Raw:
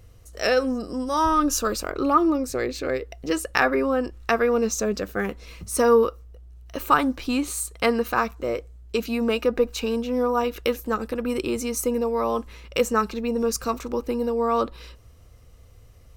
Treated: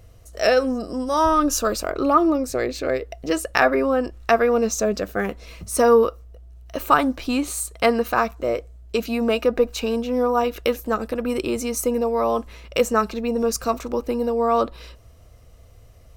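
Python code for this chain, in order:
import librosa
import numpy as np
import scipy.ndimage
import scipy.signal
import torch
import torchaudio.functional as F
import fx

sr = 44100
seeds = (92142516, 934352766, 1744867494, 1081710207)

y = fx.peak_eq(x, sr, hz=650.0, db=8.0, octaves=0.3)
y = y * 10.0 ** (1.5 / 20.0)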